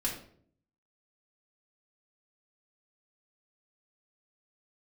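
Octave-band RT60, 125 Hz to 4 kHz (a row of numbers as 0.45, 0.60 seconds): 0.90, 0.80, 0.65, 0.50, 0.45, 0.40 seconds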